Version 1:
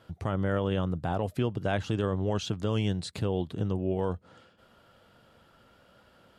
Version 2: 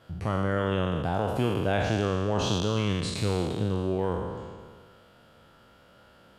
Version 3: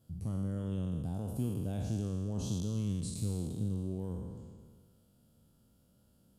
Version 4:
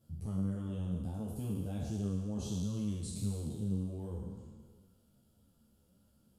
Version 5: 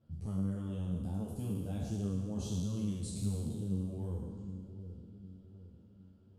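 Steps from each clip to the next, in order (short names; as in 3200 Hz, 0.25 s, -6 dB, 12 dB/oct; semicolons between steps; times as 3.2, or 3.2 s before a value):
spectral trails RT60 1.72 s
EQ curve 240 Hz 0 dB, 360 Hz -9 dB, 1900 Hz -24 dB, 10000 Hz +6 dB; gain -5.5 dB
ensemble effect; gain +1.5 dB
dark delay 0.758 s, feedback 44%, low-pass 430 Hz, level -9 dB; low-pass opened by the level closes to 2700 Hz, open at -34 dBFS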